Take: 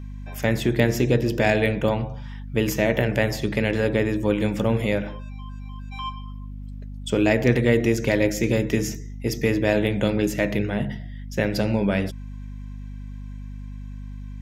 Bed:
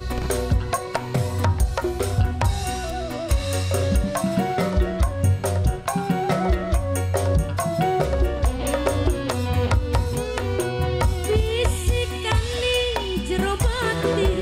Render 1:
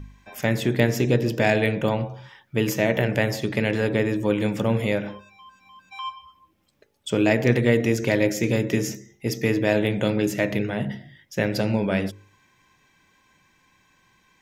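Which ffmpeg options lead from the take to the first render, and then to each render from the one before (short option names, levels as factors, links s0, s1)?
-af "bandreject=f=50:t=h:w=4,bandreject=f=100:t=h:w=4,bandreject=f=150:t=h:w=4,bandreject=f=200:t=h:w=4,bandreject=f=250:t=h:w=4,bandreject=f=300:t=h:w=4,bandreject=f=350:t=h:w=4,bandreject=f=400:t=h:w=4,bandreject=f=450:t=h:w=4,bandreject=f=500:t=h:w=4,bandreject=f=550:t=h:w=4"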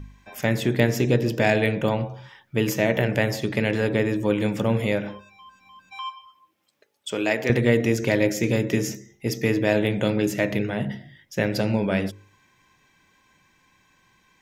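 -filter_complex "[0:a]asettb=1/sr,asplit=3[s0][s1][s2];[s0]atrim=end=6.034[s3];[s1]atrim=start=6.03:end=7.5,asetpts=PTS-STARTPTS,afade=t=in:d=0.004:c=qsin,afade=t=out:st=1.466:d=0.004:c=qsin,highpass=f=570:p=1[s4];[s2]atrim=start=7.496[s5];[s3][s4]acrossfade=d=0.004:c1=hsin:c2=qsin[s6];[s6][s5]acrossfade=d=0.004:c1=qsin:c2=hsin"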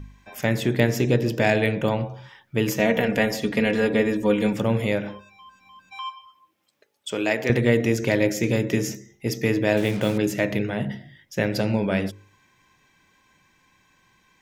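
-filter_complex "[0:a]asettb=1/sr,asplit=3[s0][s1][s2];[s0]atrim=end=2.794[s3];[s1]atrim=start=2.79:end=4.53,asetpts=PTS-STARTPTS,afade=t=in:d=0.004:c=qsin,afade=t=out:st=1.736:d=0.004:c=qsin,aecho=1:1:4.2:0.65,atrim=end_sample=76734[s4];[s2]atrim=start=4.526[s5];[s3][s4]acrossfade=d=0.004:c1=hsin:c2=qsin[s6];[s6][s5]acrossfade=d=0.004:c1=qsin:c2=hsin,asettb=1/sr,asplit=3[s7][s8][s9];[s7]atrim=end=9.774[s10];[s8]atrim=start=9.77:end=10.18,asetpts=PTS-STARTPTS,afade=t=in:d=0.004:c=qsin,afade=t=out:st=0.406:d=0.004:c=qsin,acrusher=bits=5:mix=0:aa=0.5[s11];[s9]atrim=start=10.176[s12];[s10][s11]acrossfade=d=0.004:c1=hsin:c2=qsin[s13];[s13][s12]acrossfade=d=0.004:c1=qsin:c2=hsin"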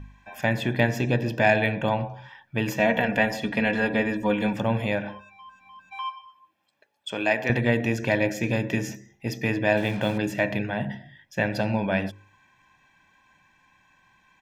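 -af "bass=f=250:g=-6,treble=f=4000:g=-10,aecho=1:1:1.2:0.57"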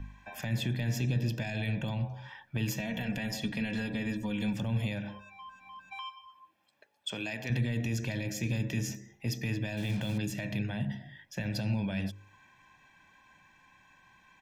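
-filter_complex "[0:a]alimiter=limit=0.158:level=0:latency=1:release=13,acrossover=split=210|3000[s0][s1][s2];[s1]acompressor=threshold=0.00631:ratio=4[s3];[s0][s3][s2]amix=inputs=3:normalize=0"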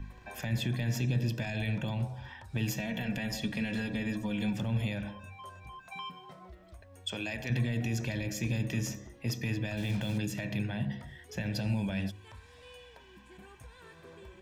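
-filter_complex "[1:a]volume=0.0282[s0];[0:a][s0]amix=inputs=2:normalize=0"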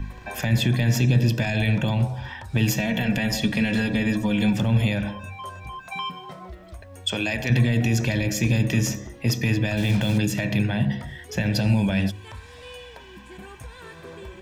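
-af "volume=3.55"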